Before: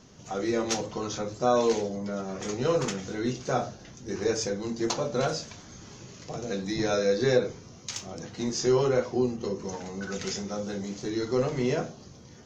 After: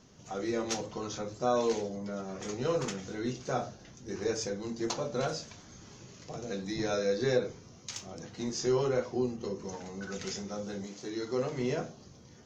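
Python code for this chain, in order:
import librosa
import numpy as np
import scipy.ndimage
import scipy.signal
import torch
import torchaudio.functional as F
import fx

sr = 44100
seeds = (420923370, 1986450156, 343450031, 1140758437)

y = fx.highpass(x, sr, hz=fx.line((10.86, 380.0), (11.58, 100.0)), slope=6, at=(10.86, 11.58), fade=0.02)
y = F.gain(torch.from_numpy(y), -5.0).numpy()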